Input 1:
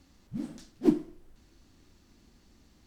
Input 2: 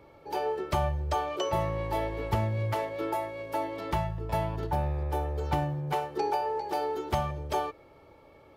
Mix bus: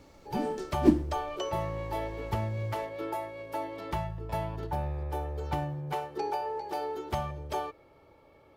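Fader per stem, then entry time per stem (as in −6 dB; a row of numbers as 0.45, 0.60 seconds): +2.0, −3.5 decibels; 0.00, 0.00 seconds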